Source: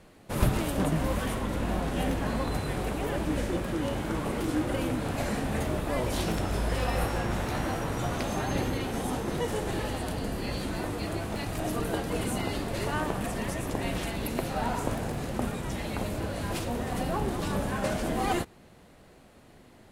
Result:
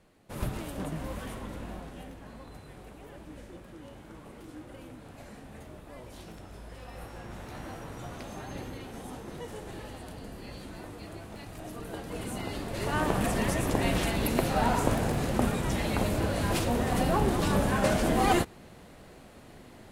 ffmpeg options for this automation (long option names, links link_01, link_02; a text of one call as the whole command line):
ffmpeg -i in.wav -af "volume=12.5dB,afade=type=out:start_time=1.46:duration=0.63:silence=0.375837,afade=type=in:start_time=6.84:duration=0.86:silence=0.473151,afade=type=in:start_time=11.78:duration=0.98:silence=0.421697,afade=type=in:start_time=12.76:duration=0.41:silence=0.446684" out.wav